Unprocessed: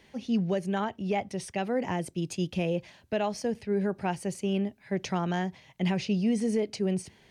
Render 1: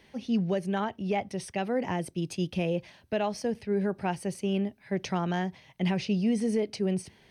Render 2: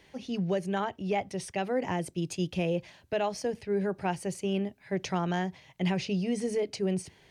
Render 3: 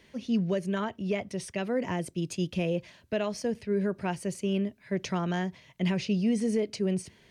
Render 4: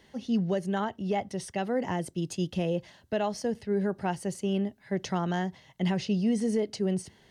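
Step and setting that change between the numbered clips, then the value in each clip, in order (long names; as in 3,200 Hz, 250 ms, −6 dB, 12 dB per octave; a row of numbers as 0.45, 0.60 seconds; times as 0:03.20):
notch filter, centre frequency: 7,100, 220, 800, 2,400 Hertz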